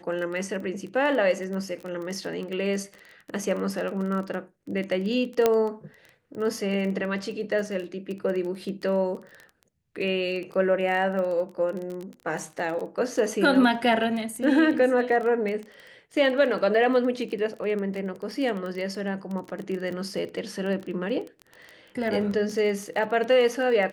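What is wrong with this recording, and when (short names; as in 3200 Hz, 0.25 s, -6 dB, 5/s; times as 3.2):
crackle 19/s -31 dBFS
5.46 pop -7 dBFS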